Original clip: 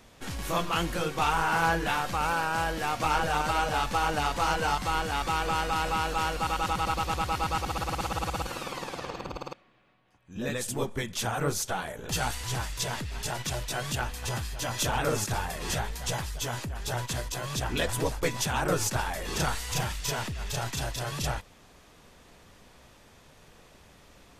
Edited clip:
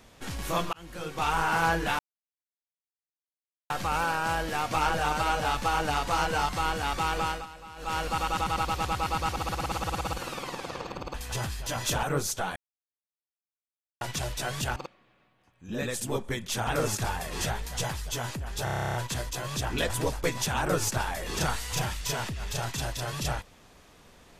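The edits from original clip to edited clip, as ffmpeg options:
-filter_complex "[0:a]asplit=21[a][b][c][d][e][f][g][h][i][j][k][l][m][n][o][p][q][r][s][t][u];[a]atrim=end=0.73,asetpts=PTS-STARTPTS,afade=t=out:st=0.726:d=0.004:c=hsin[v];[b]atrim=start=0.73:end=1.99,asetpts=PTS-STARTPTS,afade=t=in:d=0.65,afade=t=out:st=1.256:d=0.004:c=hsin,apad=pad_dur=1.71[w];[c]atrim=start=1.99:end=5.76,asetpts=PTS-STARTPTS,afade=t=in:d=0.004:c=hsin,afade=t=out:st=3.45:d=0.32:c=qsin:silence=0.141254[x];[d]atrim=start=5.76:end=6.05,asetpts=PTS-STARTPTS,volume=-17dB[y];[e]atrim=start=6.05:end=9.432,asetpts=PTS-STARTPTS,afade=t=in:d=0.32:c=qsin:silence=0.141254[z];[f]atrim=start=14.068:end=14.962[aa];[g]atrim=start=11.338:end=11.87,asetpts=PTS-STARTPTS,afade=t=out:st=0.528:d=0.004:c=hsin[ab];[h]atrim=start=11.87:end=13.32,asetpts=PTS-STARTPTS,volume=0[ac];[i]atrim=start=13.32:end=14.072,asetpts=PTS-STARTPTS,afade=t=in:d=0.004:c=hsin[ad];[j]atrim=start=9.428:end=11.342[ae];[k]atrim=start=14.958:end=16.962[af];[l]atrim=start=16.928:end=16.962[ag];[m]atrim=start=16.928:end=16.962[ah];[n]atrim=start=16.928:end=16.962[ai];[o]atrim=start=16.928:end=16.962[aj];[p]atrim=start=16.928:end=16.962[ak];[q]atrim=start=16.928:end=16.962[al];[r]atrim=start=16.928:end=16.962[am];[s]atrim=start=16.928:end=16.962[an];[t]atrim=start=16.928:end=16.962[ao];[u]atrim=start=16.928[ap];[v][w][x][y][z]concat=n=5:v=0:a=1[aq];[aq][aa]acrossfade=d=0.004:c1=hsin:c2=hsin[ar];[ab][ac][ad]concat=n=3:v=0:a=1[as];[ar][as]acrossfade=d=0.004:c1=hsin:c2=hsin[at];[at][ae]acrossfade=d=0.004:c1=hsin:c2=hsin[au];[au][af]acrossfade=d=0.004:c1=hsin:c2=hsin[av];[av][ag]acrossfade=d=0.004:c1=hsin:c2=hsin[aw];[aw][ah]acrossfade=d=0.004:c1=hsin:c2=hsin[ax];[ax][ai]acrossfade=d=0.004:c1=hsin:c2=hsin[ay];[ay][aj]acrossfade=d=0.004:c1=hsin:c2=hsin[az];[az][ak]acrossfade=d=0.004:c1=hsin:c2=hsin[ba];[ba][al]acrossfade=d=0.004:c1=hsin:c2=hsin[bb];[bb][am]acrossfade=d=0.004:c1=hsin:c2=hsin[bc];[bc][an]acrossfade=d=0.004:c1=hsin:c2=hsin[bd];[bd][ao]acrossfade=d=0.004:c1=hsin:c2=hsin[be];[be][ap]acrossfade=d=0.004:c1=hsin:c2=hsin"

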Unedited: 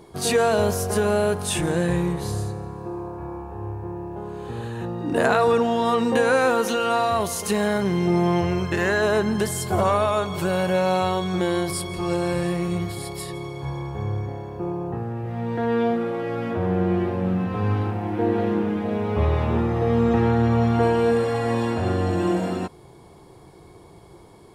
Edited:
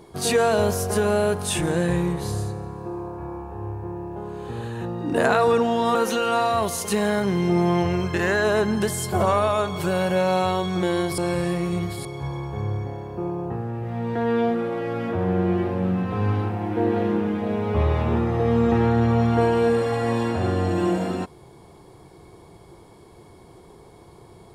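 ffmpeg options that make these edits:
-filter_complex "[0:a]asplit=4[a][b][c][d];[a]atrim=end=5.952[e];[b]atrim=start=6.528:end=11.762[f];[c]atrim=start=12.168:end=13.042[g];[d]atrim=start=13.468[h];[e][f]acrossfade=d=0.004:c1=hsin:c2=hsin[i];[i][g]acrossfade=d=0.004:c1=hsin:c2=hsin[j];[j][h]acrossfade=d=0.004:c1=hsin:c2=hsin"

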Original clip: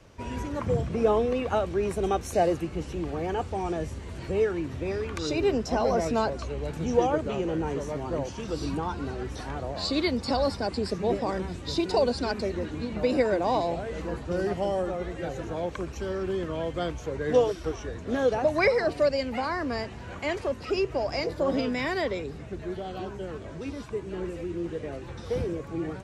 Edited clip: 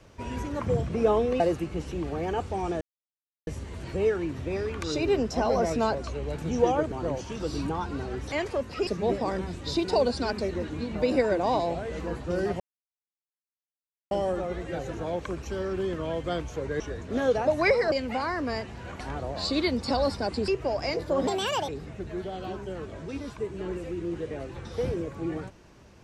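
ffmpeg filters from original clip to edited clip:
-filter_complex "[0:a]asplit=13[a][b][c][d][e][f][g][h][i][j][k][l][m];[a]atrim=end=1.402[n];[b]atrim=start=2.408:end=3.82,asetpts=PTS-STARTPTS,afade=t=out:st=1.408:d=0.004:c=hsin,apad=pad_dur=0.66[o];[c]atrim=start=3.82:end=7.272,asetpts=PTS-STARTPTS,afade=t=in:d=0.004:c=hsin[p];[d]atrim=start=7.998:end=9.402[q];[e]atrim=start=20.228:end=20.782[r];[f]atrim=start=10.878:end=14.61,asetpts=PTS-STARTPTS,afade=t=out:st=3.728:d=0.004:c=hsin,apad=pad_dur=1.51[s];[g]atrim=start=14.61:end=17.302,asetpts=PTS-STARTPTS,afade=t=in:d=0.004:c=hsin[t];[h]atrim=start=17.768:end=18.892[u];[i]atrim=start=19.148:end=20.232[v];[j]atrim=start=9.398:end=10.882[w];[k]atrim=start=20.778:end=21.574[x];[l]atrim=start=21.57:end=22.21,asetpts=PTS-STARTPTS,asetrate=67914,aresample=44100,atrim=end_sample=18327,asetpts=PTS-STARTPTS[y];[m]atrim=start=22.206[z];[o][p]concat=n=2:v=0:a=1[aa];[n][aa]acrossfade=d=0.004:c1=hsin:c2=hsin[ab];[ab][q]acrossfade=d=0.004:c1=hsin:c2=hsin[ac];[ac][r]acrossfade=d=0.004:c1=hsin:c2=hsin[ad];[s][t]concat=n=2:v=0:a=1[ae];[ad][ae]acrossfade=d=0.004:c1=hsin:c2=hsin[af];[af][u]acrossfade=d=0.004:c1=hsin:c2=hsin[ag];[ag][v]acrossfade=d=0.004:c1=hsin:c2=hsin[ah];[ah][w]acrossfade=d=0.004:c1=hsin:c2=hsin[ai];[ai][x]acrossfade=d=0.004:c1=hsin:c2=hsin[aj];[aj][y]acrossfade=d=0.004:c1=hsin:c2=hsin[ak];[ak][z]acrossfade=d=0.004:c1=hsin:c2=hsin"

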